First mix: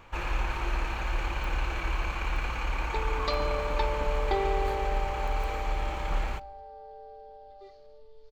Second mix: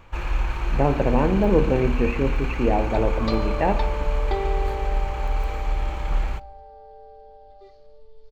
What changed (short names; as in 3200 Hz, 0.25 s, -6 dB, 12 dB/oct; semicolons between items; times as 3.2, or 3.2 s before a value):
speech: unmuted; master: add low shelf 220 Hz +7 dB